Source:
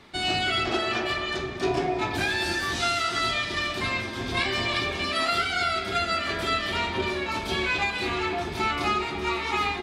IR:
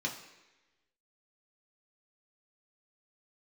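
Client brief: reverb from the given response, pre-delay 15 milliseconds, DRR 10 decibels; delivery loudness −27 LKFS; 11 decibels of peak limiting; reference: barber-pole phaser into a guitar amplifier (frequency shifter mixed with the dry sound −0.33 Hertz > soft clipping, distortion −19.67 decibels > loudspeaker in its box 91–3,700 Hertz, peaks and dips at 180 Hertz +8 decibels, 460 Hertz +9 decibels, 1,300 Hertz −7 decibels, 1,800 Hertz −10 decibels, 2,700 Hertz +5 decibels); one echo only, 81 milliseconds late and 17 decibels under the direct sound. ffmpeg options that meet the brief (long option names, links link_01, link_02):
-filter_complex "[0:a]alimiter=limit=-23dB:level=0:latency=1,aecho=1:1:81:0.141,asplit=2[link_01][link_02];[1:a]atrim=start_sample=2205,adelay=15[link_03];[link_02][link_03]afir=irnorm=-1:irlink=0,volume=-14dB[link_04];[link_01][link_04]amix=inputs=2:normalize=0,asplit=2[link_05][link_06];[link_06]afreqshift=-0.33[link_07];[link_05][link_07]amix=inputs=2:normalize=1,asoftclip=threshold=-27.5dB,highpass=91,equalizer=frequency=180:width_type=q:width=4:gain=8,equalizer=frequency=460:width_type=q:width=4:gain=9,equalizer=frequency=1300:width_type=q:width=4:gain=-7,equalizer=frequency=1800:width_type=q:width=4:gain=-10,equalizer=frequency=2700:width_type=q:width=4:gain=5,lowpass=frequency=3700:width=0.5412,lowpass=frequency=3700:width=1.3066,volume=8dB"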